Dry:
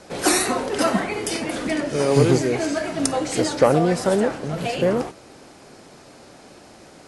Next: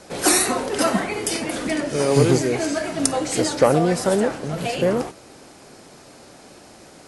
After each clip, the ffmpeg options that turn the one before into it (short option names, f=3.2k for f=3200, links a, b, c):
-af "highshelf=f=8k:g=7"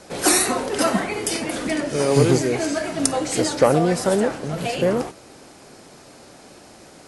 -af anull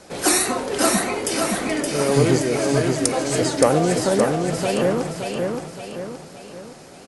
-af "aecho=1:1:571|1142|1713|2284|2855|3426:0.631|0.284|0.128|0.0575|0.0259|0.0116,volume=-1dB"